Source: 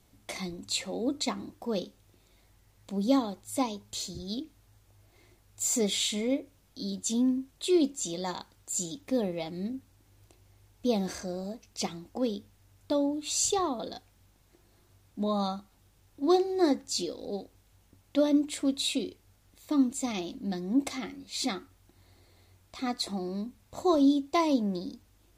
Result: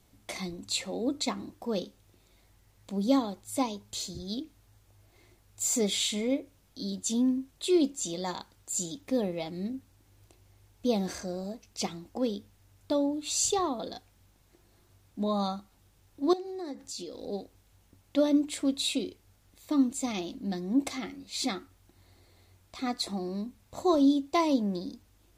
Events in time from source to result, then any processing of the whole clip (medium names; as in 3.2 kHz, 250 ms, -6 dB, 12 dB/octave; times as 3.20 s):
16.33–17.14 s: compression 4:1, threshold -37 dBFS